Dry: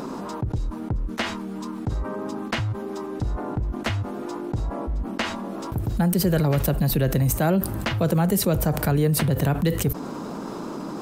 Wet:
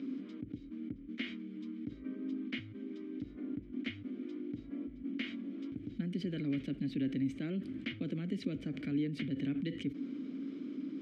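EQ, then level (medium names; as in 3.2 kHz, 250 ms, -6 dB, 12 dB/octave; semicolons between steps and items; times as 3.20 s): vowel filter i; low-pass 5.5 kHz 12 dB/octave; -1.0 dB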